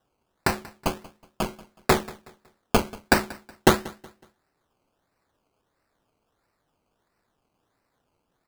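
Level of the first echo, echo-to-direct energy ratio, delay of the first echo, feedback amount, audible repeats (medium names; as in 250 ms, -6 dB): -21.0 dB, -20.5 dB, 185 ms, 34%, 2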